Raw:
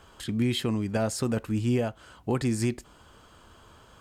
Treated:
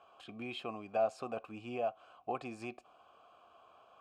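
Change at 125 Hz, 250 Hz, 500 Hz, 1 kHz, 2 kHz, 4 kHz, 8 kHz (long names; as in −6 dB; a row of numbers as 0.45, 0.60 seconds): −25.5 dB, −18.5 dB, −6.0 dB, −0.5 dB, −9.0 dB, −14.0 dB, below −20 dB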